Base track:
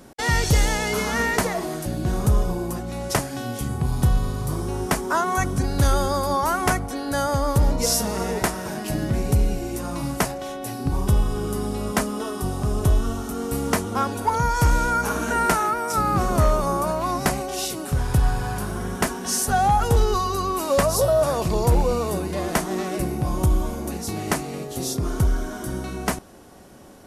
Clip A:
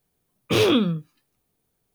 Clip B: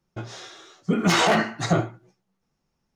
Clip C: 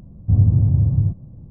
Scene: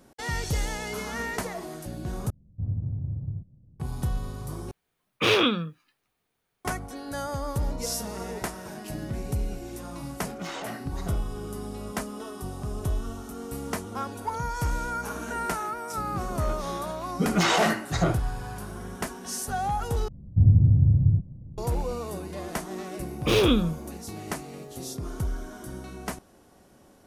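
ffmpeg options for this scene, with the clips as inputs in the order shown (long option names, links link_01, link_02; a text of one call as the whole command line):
ffmpeg -i bed.wav -i cue0.wav -i cue1.wav -i cue2.wav -filter_complex "[3:a]asplit=2[link_01][link_02];[1:a]asplit=2[link_03][link_04];[2:a]asplit=2[link_05][link_06];[0:a]volume=-9.5dB[link_07];[link_01]adynamicsmooth=sensitivity=0.5:basefreq=590[link_08];[link_03]equalizer=frequency=1800:width=0.39:gain=12[link_09];[link_02]tiltshelf=frequency=710:gain=7[link_10];[link_07]asplit=4[link_11][link_12][link_13][link_14];[link_11]atrim=end=2.304[link_15];[link_08]atrim=end=1.5,asetpts=PTS-STARTPTS,volume=-15.5dB[link_16];[link_12]atrim=start=3.796:end=4.714[link_17];[link_09]atrim=end=1.94,asetpts=PTS-STARTPTS,volume=-8dB[link_18];[link_13]atrim=start=6.646:end=20.084[link_19];[link_10]atrim=end=1.5,asetpts=PTS-STARTPTS,volume=-9.5dB[link_20];[link_14]atrim=start=21.576[link_21];[link_05]atrim=end=2.95,asetpts=PTS-STARTPTS,volume=-17.5dB,afade=type=in:duration=0.004:curve=hsin,afade=type=out:start_time=2.946:duration=0.004:curve=hsin,adelay=9350[link_22];[link_06]atrim=end=2.95,asetpts=PTS-STARTPTS,volume=-3dB,afade=type=in:duration=0.004:curve=hsin,afade=type=out:start_time=2.946:duration=0.004:curve=hsin,adelay=16310[link_23];[link_04]atrim=end=1.94,asetpts=PTS-STARTPTS,volume=-2.5dB,afade=type=in:duration=0.004:curve=hsin,afade=type=out:start_time=1.936:duration=0.004:curve=hsin,adelay=1003716S[link_24];[link_15][link_16]acrossfade=duration=0.004:curve1=hsin:curve2=hsin[link_25];[link_25][link_17]acrossfade=duration=0.004:curve1=hsin:curve2=hsin[link_26];[link_26][link_18]acrossfade=duration=0.004:curve1=hsin:curve2=hsin[link_27];[link_27][link_19]acrossfade=duration=0.004:curve1=hsin:curve2=hsin[link_28];[link_28][link_20]acrossfade=duration=0.004:curve1=hsin:curve2=hsin[link_29];[link_29][link_21]acrossfade=duration=0.004:curve1=hsin:curve2=hsin[link_30];[link_30][link_22][link_23][link_24]amix=inputs=4:normalize=0" out.wav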